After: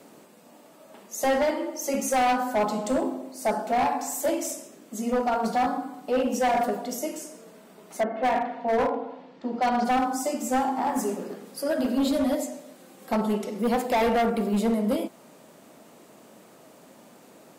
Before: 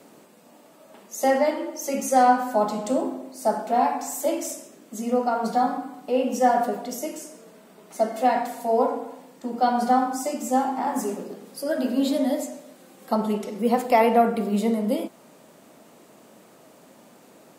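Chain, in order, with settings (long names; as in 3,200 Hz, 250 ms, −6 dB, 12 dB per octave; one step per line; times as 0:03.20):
0:08.00–0:09.84: low-pass filter 2,300 Hz → 5,600 Hz 24 dB per octave
0:11.21–0:11.68: dynamic equaliser 1,600 Hz, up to +8 dB, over −54 dBFS, Q 1.3
gain into a clipping stage and back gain 19.5 dB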